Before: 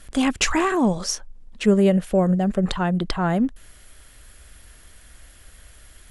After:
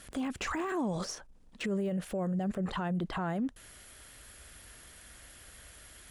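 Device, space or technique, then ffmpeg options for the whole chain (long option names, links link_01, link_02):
podcast mastering chain: -af "highpass=frequency=110:poles=1,deesser=0.95,acompressor=threshold=-20dB:ratio=6,alimiter=level_in=1dB:limit=-24dB:level=0:latency=1:release=27,volume=-1dB,volume=-1dB" -ar 48000 -c:a libmp3lame -b:a 128k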